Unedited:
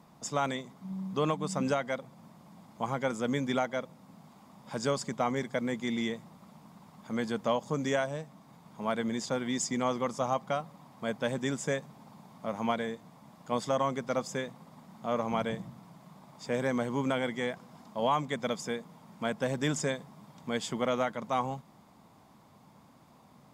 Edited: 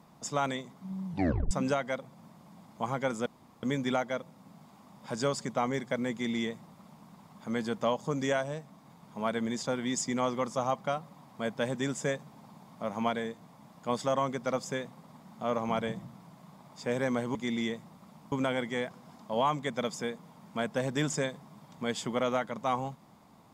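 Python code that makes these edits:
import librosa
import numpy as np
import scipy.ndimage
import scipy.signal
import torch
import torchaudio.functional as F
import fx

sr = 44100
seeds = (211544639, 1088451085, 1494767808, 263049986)

y = fx.edit(x, sr, fx.tape_stop(start_s=1.07, length_s=0.44),
    fx.insert_room_tone(at_s=3.26, length_s=0.37),
    fx.duplicate(start_s=5.75, length_s=0.97, to_s=16.98), tone=tone)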